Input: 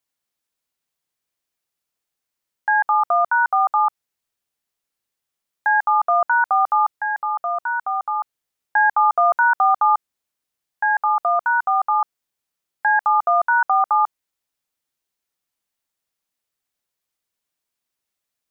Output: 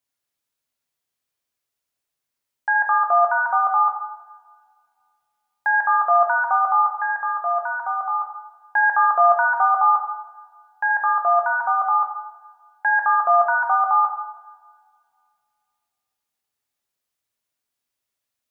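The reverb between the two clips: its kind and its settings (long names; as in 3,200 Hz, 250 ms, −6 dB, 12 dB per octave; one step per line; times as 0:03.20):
coupled-rooms reverb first 0.97 s, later 2.5 s, from −22 dB, DRR 1.5 dB
level −2.5 dB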